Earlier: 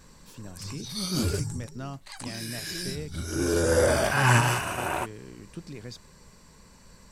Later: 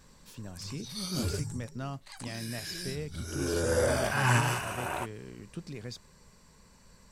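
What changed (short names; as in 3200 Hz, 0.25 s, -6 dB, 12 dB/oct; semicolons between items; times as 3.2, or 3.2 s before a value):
background -5.0 dB; master: add bell 310 Hz -3.5 dB 0.3 oct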